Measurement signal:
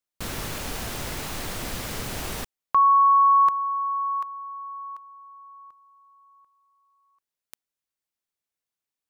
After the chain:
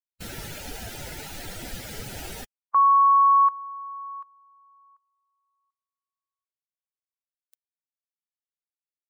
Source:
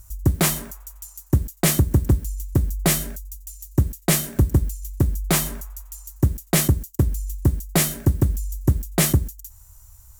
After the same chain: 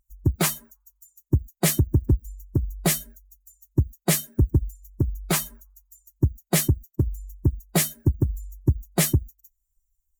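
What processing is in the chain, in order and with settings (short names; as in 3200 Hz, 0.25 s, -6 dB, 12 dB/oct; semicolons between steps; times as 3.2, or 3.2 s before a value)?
per-bin expansion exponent 2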